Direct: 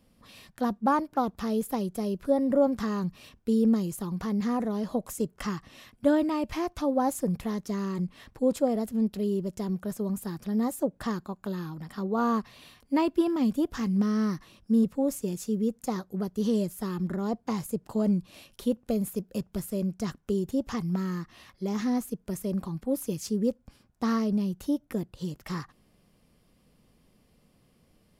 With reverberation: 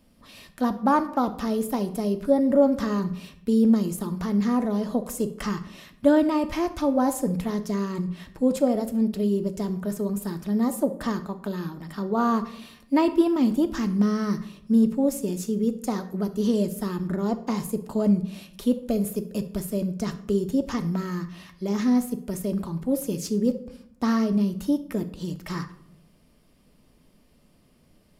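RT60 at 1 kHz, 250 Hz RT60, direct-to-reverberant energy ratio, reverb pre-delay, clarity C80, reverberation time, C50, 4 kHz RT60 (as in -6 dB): 0.65 s, 0.95 s, 7.5 dB, 3 ms, 17.0 dB, 0.70 s, 13.5 dB, 0.45 s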